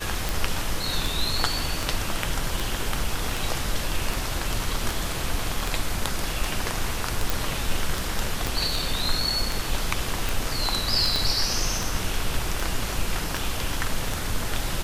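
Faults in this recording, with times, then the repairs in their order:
tick 78 rpm
7.30 s: pop
8.47 s: pop
11.16 s: pop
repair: de-click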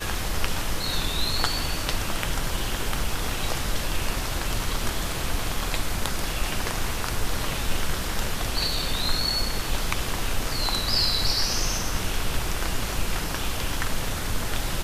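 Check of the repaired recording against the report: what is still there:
8.47 s: pop
11.16 s: pop

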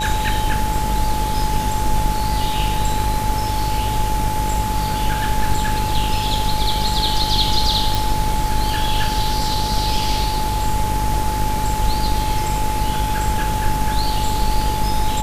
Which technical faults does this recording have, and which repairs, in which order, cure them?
buzz 50 Hz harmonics 39 -24 dBFS
whine 860 Hz -22 dBFS
7.95 s: pop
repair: de-click; de-hum 50 Hz, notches 39; band-stop 860 Hz, Q 30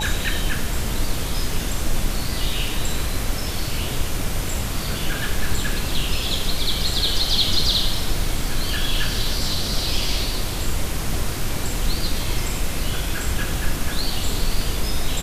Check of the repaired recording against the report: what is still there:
nothing left

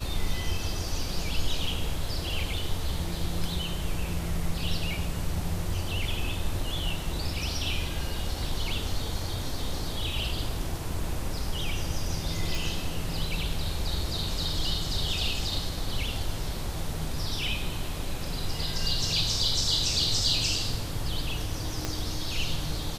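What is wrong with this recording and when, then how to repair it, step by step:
12.55 s: pop
21.85 s: pop -14 dBFS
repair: de-click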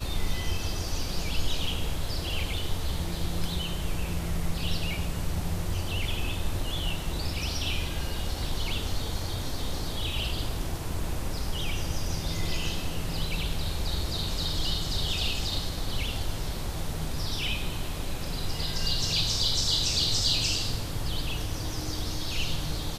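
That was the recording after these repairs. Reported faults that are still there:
21.85 s: pop

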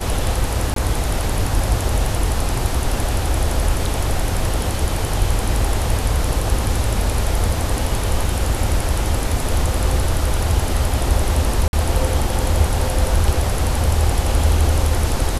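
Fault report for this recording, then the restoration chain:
0.74–0.76 s: dropout 23 ms
11.68–11.73 s: dropout 51 ms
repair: interpolate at 0.74 s, 23 ms; interpolate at 11.68 s, 51 ms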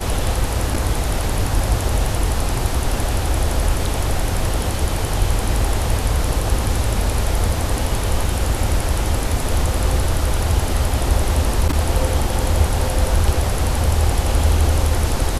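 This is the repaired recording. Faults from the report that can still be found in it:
nothing left

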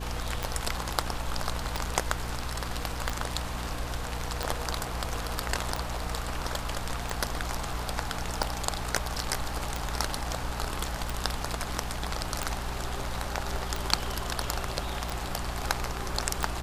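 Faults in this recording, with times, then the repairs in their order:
hum 60 Hz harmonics 5 -37 dBFS
tick 45 rpm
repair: de-click; de-hum 60 Hz, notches 5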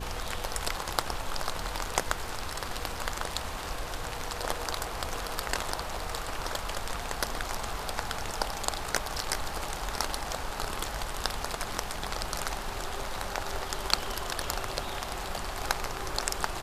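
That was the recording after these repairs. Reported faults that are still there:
nothing left

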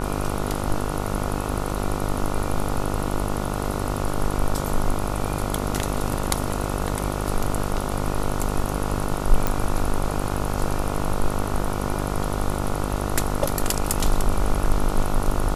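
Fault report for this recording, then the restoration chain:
buzz 50 Hz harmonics 29 -27 dBFS
9.47 s: pop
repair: de-click; de-hum 50 Hz, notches 29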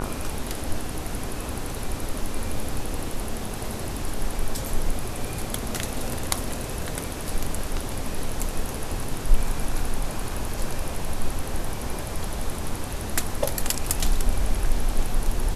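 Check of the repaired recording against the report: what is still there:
nothing left

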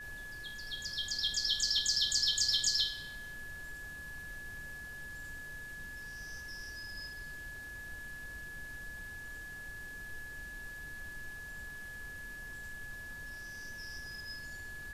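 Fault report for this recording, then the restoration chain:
whine 1.7 kHz -44 dBFS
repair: band-stop 1.7 kHz, Q 30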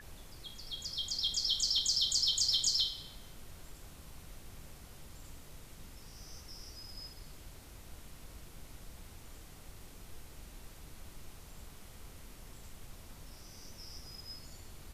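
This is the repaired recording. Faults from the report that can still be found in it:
nothing left

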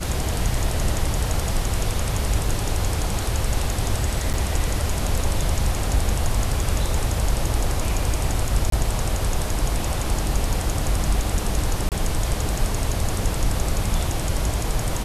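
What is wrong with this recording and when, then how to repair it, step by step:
4.33–4.34 s: dropout 7.8 ms
8.70–8.72 s: dropout 23 ms
11.89–11.92 s: dropout 28 ms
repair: interpolate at 4.33 s, 7.8 ms; interpolate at 8.70 s, 23 ms; interpolate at 11.89 s, 28 ms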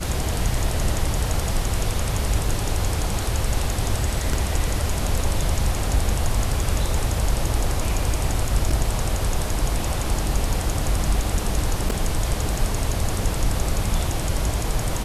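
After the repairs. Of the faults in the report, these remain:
nothing left

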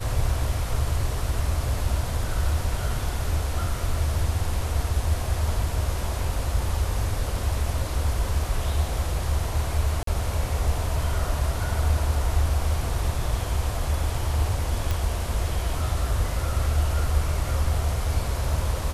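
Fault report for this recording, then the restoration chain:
10.03–10.07 s: dropout 43 ms
14.91 s: pop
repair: de-click; interpolate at 10.03 s, 43 ms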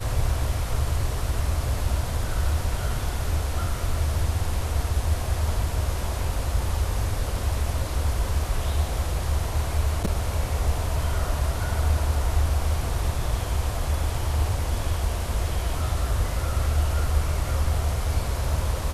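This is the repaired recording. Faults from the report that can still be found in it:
nothing left

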